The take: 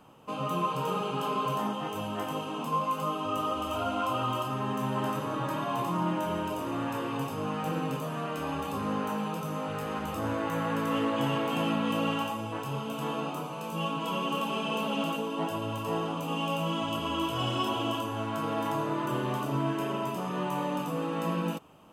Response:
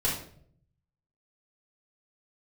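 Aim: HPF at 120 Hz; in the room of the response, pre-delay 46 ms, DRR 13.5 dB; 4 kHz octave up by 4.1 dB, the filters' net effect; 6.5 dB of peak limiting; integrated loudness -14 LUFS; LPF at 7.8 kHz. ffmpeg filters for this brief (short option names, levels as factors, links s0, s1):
-filter_complex "[0:a]highpass=120,lowpass=7800,equalizer=f=4000:t=o:g=6.5,alimiter=limit=0.0794:level=0:latency=1,asplit=2[s0][s1];[1:a]atrim=start_sample=2205,adelay=46[s2];[s1][s2]afir=irnorm=-1:irlink=0,volume=0.075[s3];[s0][s3]amix=inputs=2:normalize=0,volume=7.94"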